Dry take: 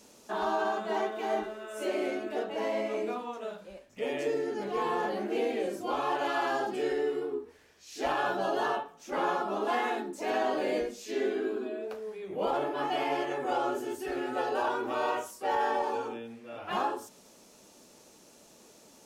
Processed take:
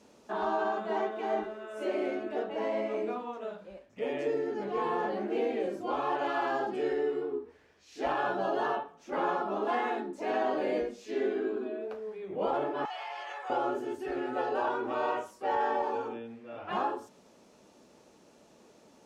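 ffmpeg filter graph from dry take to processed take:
-filter_complex "[0:a]asettb=1/sr,asplit=3[s0][s1][s2];[s0]atrim=end=12.854[s3];[s1]atrim=start=12.85:end=13.5,asetpts=PTS-STARTPTS,afade=t=in:d=0.004:c=qsin,afade=t=out:st=0.646:d=0.004:c=qsin,highpass=f=750:w=0.5412,highpass=f=750:w=1.3066,equalizer=f=4900:w=0.72:g=7,acompressor=threshold=0.02:ratio=6:attack=3.2:release=140:knee=1:detection=peak[s4];[s2]atrim=start=13.496[s5];[s3][s4]acrossfade=d=0.004:c1=hsin:c2=qsin[s6];[s6][s5]acrossfade=d=0.004:c1=qsin:c2=hsin,highpass=41,aemphasis=mode=reproduction:type=75kf"

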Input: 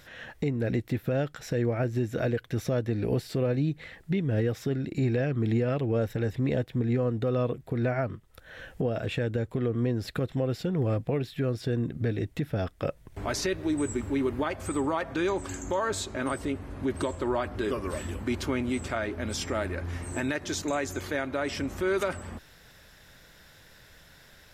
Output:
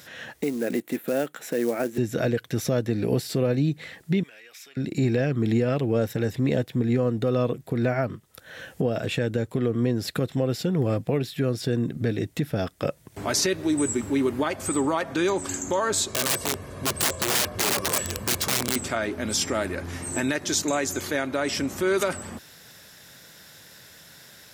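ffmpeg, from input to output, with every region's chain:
-filter_complex "[0:a]asettb=1/sr,asplit=3[s0][s1][s2];[s0]atrim=end=0.424[s3];[s1]atrim=start=0.42:end=1.98,asetpts=PTS-STARTPTS,afade=t=in:d=0.004:c=qsin,afade=t=out:st=1.556:d=0.004:c=qsin,highpass=f=220:w=0.5412,highpass=f=220:w=1.3066,equalizer=f=5100:t=o:w=0.67:g=-13,acrusher=bits=6:mode=log:mix=0:aa=0.000001[s4];[s2]atrim=start=1.976[s5];[s3][s4]acrossfade=d=0.004:c1=hsin:c2=qsin[s6];[s6][s5]acrossfade=d=0.004:c1=qsin:c2=hsin,asettb=1/sr,asplit=3[s7][s8][s9];[s7]atrim=end=4.234[s10];[s8]atrim=start=4.23:end=4.77,asetpts=PTS-STARTPTS,afade=t=in:d=0.004:c=qsin,afade=t=out:st=0.536:d=0.004:c=qsin,highpass=1400,acompressor=threshold=0.00282:ratio=8:attack=3.2:release=140:knee=1:detection=peak,equalizer=f=2400:w=5.7:g=11.5[s11];[s9]atrim=start=4.766[s12];[s10][s11]acrossfade=d=0.004:c1=hsin:c2=qsin[s13];[s13][s12]acrossfade=d=0.004:c1=qsin:c2=hsin,asettb=1/sr,asplit=3[s14][s15][s16];[s14]atrim=end=16.084[s17];[s15]atrim=start=16.08:end=18.76,asetpts=PTS-STARTPTS,afade=t=in:d=0.004:c=qsin,afade=t=out:st=2.676:d=0.004:c=qsin,aecho=1:1:1.8:0.58,atrim=end_sample=118188,aeval=exprs='(mod(16.8*val(0)+1,2)-1)/16.8':c=same[s18];[s16]atrim=start=18.756[s19];[s17][s18]acrossfade=d=0.004:c1=hsin:c2=qsin[s20];[s20][s19]acrossfade=d=0.004:c1=qsin:c2=hsin,highpass=140,bass=f=250:g=3,treble=f=4000:g=8,volume=1.5"

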